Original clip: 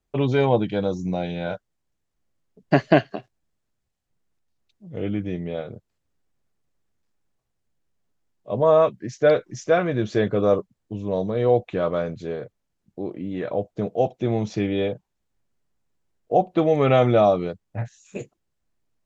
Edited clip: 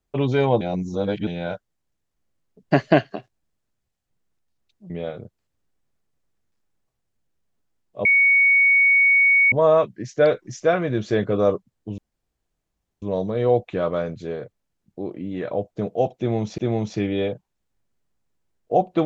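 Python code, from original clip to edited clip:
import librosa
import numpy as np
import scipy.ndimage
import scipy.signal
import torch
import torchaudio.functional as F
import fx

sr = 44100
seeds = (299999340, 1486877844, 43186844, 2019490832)

y = fx.edit(x, sr, fx.reverse_span(start_s=0.61, length_s=0.66),
    fx.cut(start_s=4.9, length_s=0.51),
    fx.insert_tone(at_s=8.56, length_s=1.47, hz=2230.0, db=-12.5),
    fx.insert_room_tone(at_s=11.02, length_s=1.04),
    fx.repeat(start_s=14.18, length_s=0.4, count=2), tone=tone)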